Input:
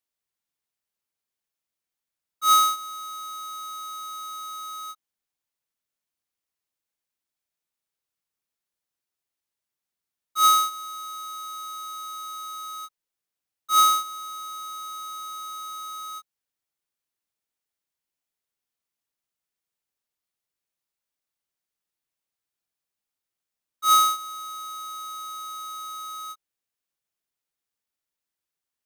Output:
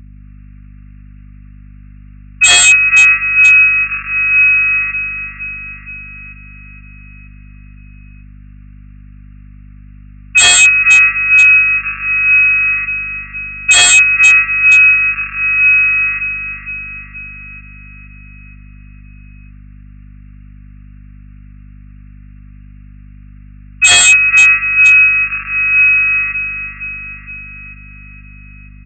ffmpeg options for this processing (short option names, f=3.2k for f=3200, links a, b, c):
-filter_complex "[0:a]afftfilt=real='re*between(b*sr/4096,1700,4200)':imag='im*between(b*sr/4096,1700,4200)':win_size=4096:overlap=0.75,dynaudnorm=f=110:g=5:m=6.5dB,asplit=2[a][b];[b]aecho=0:1:471|942|1413|1884|2355|2826|3297:0.376|0.207|0.114|0.0625|0.0344|0.0189|0.0104[c];[a][c]amix=inputs=2:normalize=0,asetrate=29433,aresample=44100,atempo=1.49831,aresample=16000,aeval=exprs='0.0422*(abs(mod(val(0)/0.0422+3,4)-2)-1)':c=same,aresample=44100,apsyclip=32dB,aeval=exprs='val(0)+0.0251*(sin(2*PI*50*n/s)+sin(2*PI*2*50*n/s)/2+sin(2*PI*3*50*n/s)/3+sin(2*PI*4*50*n/s)/4+sin(2*PI*5*50*n/s)/5)':c=same,volume=-2.5dB"